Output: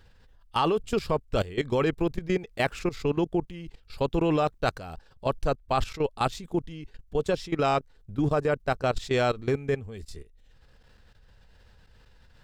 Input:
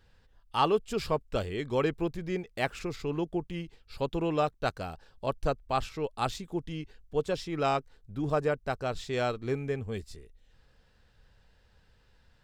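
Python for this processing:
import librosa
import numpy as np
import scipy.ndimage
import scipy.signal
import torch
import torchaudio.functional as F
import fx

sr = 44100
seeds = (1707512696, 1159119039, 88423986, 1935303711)

y = fx.low_shelf(x, sr, hz=64.0, db=3.5)
y = fx.level_steps(y, sr, step_db=16)
y = y * 10.0 ** (9.0 / 20.0)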